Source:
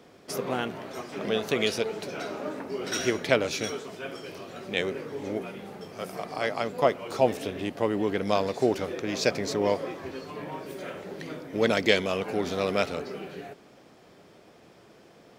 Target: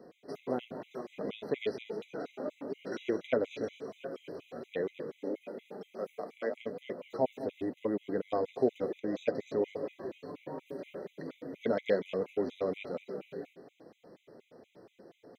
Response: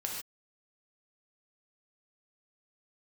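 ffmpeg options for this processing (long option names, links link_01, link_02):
-filter_complex "[0:a]asettb=1/sr,asplit=3[link_01][link_02][link_03];[link_01]atrim=end=5.104[link_04];[link_02]atrim=start=5.1:end=6.57,asetpts=PTS-STARTPTS,afade=type=in:duration=0.004:curve=qsin,afade=type=out:start_time=1.466:duration=0.004:curve=qsin,highpass=frequency=190:width=0.5412,highpass=frequency=190:width=1.3066[link_05];[link_03]atrim=start=6.566[link_06];[link_04][link_05]acrossfade=duration=0.004:curve1=hsin:curve2=qsin[link_07];[link_07][link_06]acrossfade=duration=0.004:curve1=qsin:curve2=hsin,asplit=2[link_08][link_09];[link_09]acompressor=threshold=-40dB:ratio=6,volume=-1.5dB[link_10];[link_08][link_10]amix=inputs=2:normalize=0,flanger=delay=5.2:depth=3.1:regen=-50:speed=1:shape=triangular,asplit=2[link_11][link_12];[link_12]aecho=0:1:208:0.178[link_13];[link_11][link_13]amix=inputs=2:normalize=0,acrossover=split=4300[link_14][link_15];[link_15]acompressor=threshold=-53dB:ratio=4:attack=1:release=60[link_16];[link_14][link_16]amix=inputs=2:normalize=0,equalizer=frequency=250:width_type=o:width=1:gain=7,equalizer=frequency=500:width_type=o:width=1:gain=9,equalizer=frequency=8000:width_type=o:width=1:gain=-6,afftfilt=real='re*gt(sin(2*PI*4.2*pts/sr)*(1-2*mod(floor(b*sr/1024/2000),2)),0)':imag='im*gt(sin(2*PI*4.2*pts/sr)*(1-2*mod(floor(b*sr/1024/2000),2)),0)':win_size=1024:overlap=0.75,volume=-8.5dB"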